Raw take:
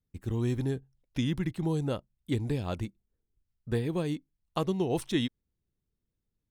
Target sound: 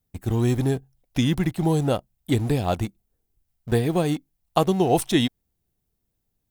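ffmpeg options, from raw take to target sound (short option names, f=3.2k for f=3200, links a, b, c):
-filter_complex "[0:a]highshelf=f=9.5k:g=12,asplit=2[a][b];[b]aeval=exprs='val(0)*gte(abs(val(0)),0.0158)':c=same,volume=-10dB[c];[a][c]amix=inputs=2:normalize=0,equalizer=f=730:w=3.5:g=9,volume=5.5dB"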